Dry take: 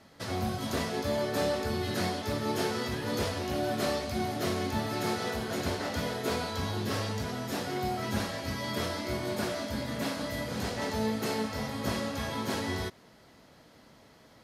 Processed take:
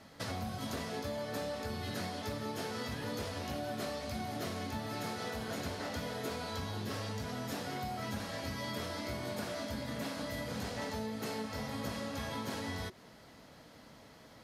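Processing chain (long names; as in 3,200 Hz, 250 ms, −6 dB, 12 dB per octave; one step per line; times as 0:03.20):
notch filter 370 Hz, Q 12
downward compressor, threshold −37 dBFS, peak gain reduction 11 dB
level +1 dB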